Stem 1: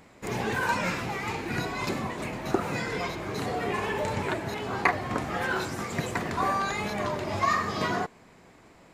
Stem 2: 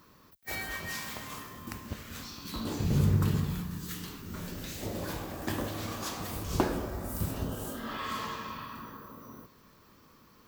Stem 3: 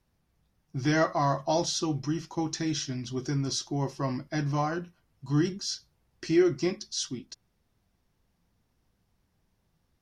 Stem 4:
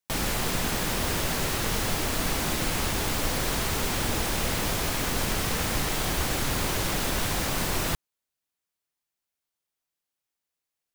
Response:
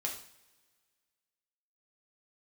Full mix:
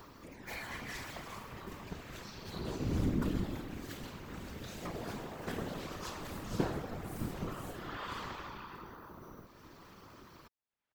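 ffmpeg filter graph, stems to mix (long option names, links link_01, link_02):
-filter_complex "[0:a]aphaser=in_gain=1:out_gain=1:delay=2.2:decay=0.47:speed=0.29:type=triangular,volume=-19dB,asplit=2[link_01][link_02];[link_02]volume=-18dB[link_03];[1:a]highshelf=frequency=8300:gain=-9.5,volume=2dB,asplit=2[link_04][link_05];[link_05]volume=-13dB[link_06];[3:a]lowpass=2600,adelay=550,volume=-14dB[link_07];[4:a]atrim=start_sample=2205[link_08];[link_03][link_06]amix=inputs=2:normalize=0[link_09];[link_09][link_08]afir=irnorm=-1:irlink=0[link_10];[link_01][link_04][link_07][link_10]amix=inputs=4:normalize=0,acompressor=mode=upward:threshold=-35dB:ratio=2.5,aeval=exprs='val(0)*sin(2*PI*100*n/s)':channel_layout=same,afftfilt=real='hypot(re,im)*cos(2*PI*random(0))':imag='hypot(re,im)*sin(2*PI*random(1))':win_size=512:overlap=0.75"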